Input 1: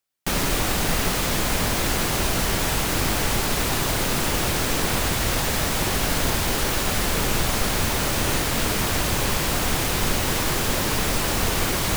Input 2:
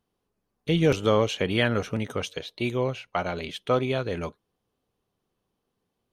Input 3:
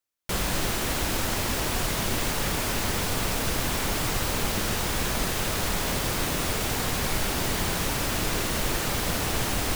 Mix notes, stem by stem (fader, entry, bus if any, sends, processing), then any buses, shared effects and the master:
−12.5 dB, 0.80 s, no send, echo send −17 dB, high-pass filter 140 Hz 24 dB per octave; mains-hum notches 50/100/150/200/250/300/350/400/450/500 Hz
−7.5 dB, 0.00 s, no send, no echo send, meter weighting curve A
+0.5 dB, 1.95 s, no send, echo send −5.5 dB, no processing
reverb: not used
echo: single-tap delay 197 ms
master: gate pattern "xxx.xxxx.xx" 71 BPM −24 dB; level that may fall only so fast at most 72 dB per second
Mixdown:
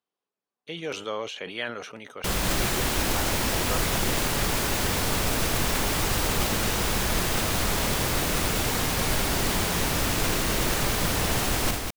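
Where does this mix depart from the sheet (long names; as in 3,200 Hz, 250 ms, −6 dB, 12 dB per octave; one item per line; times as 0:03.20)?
stem 1: muted
master: missing gate pattern "xxx.xxxx.xx" 71 BPM −24 dB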